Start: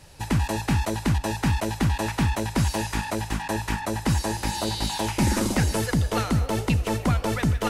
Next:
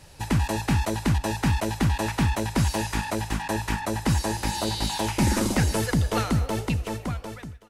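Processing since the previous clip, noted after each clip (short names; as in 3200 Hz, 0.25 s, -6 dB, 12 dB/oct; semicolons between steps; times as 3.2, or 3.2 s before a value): ending faded out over 1.44 s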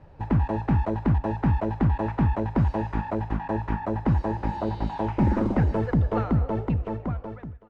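LPF 1100 Hz 12 dB/oct; gain +1 dB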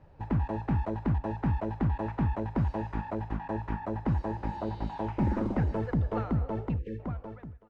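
spectral delete 6.79–7, 550–1600 Hz; gain -6 dB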